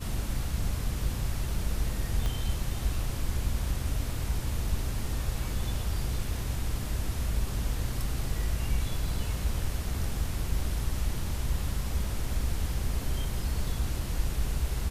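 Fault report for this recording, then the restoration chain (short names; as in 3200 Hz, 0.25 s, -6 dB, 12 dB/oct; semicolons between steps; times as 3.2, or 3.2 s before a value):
2.26 pop -18 dBFS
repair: de-click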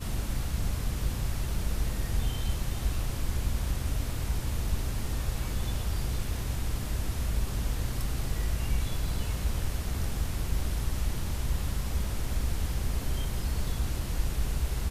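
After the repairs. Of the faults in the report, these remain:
2.26 pop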